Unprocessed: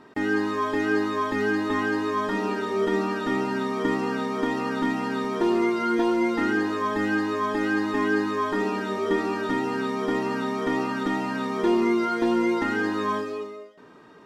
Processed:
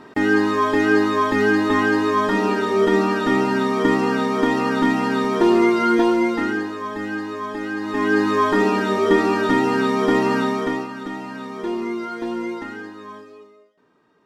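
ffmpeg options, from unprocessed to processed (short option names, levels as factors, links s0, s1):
-af "volume=7.5,afade=t=out:st=5.88:d=0.85:silence=0.334965,afade=t=in:st=7.79:d=0.56:silence=0.298538,afade=t=out:st=10.38:d=0.5:silence=0.251189,afade=t=out:st=12.46:d=0.48:silence=0.421697"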